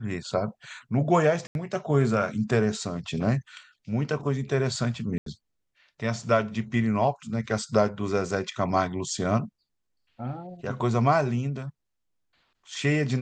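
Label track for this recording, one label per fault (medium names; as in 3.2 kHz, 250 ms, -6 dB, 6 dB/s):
1.470000	1.550000	dropout 81 ms
5.180000	5.260000	dropout 83 ms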